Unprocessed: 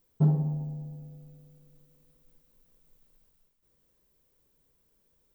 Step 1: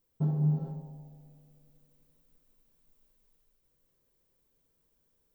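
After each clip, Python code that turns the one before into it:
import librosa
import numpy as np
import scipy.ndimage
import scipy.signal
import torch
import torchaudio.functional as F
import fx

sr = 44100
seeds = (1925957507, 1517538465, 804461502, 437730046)

y = fx.rev_gated(x, sr, seeds[0], gate_ms=480, shape='flat', drr_db=0.0)
y = y * librosa.db_to_amplitude(-6.5)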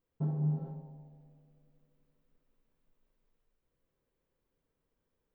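y = fx.bass_treble(x, sr, bass_db=-2, treble_db=-15)
y = y * librosa.db_to_amplitude(-2.5)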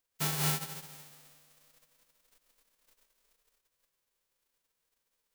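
y = fx.envelope_flatten(x, sr, power=0.1)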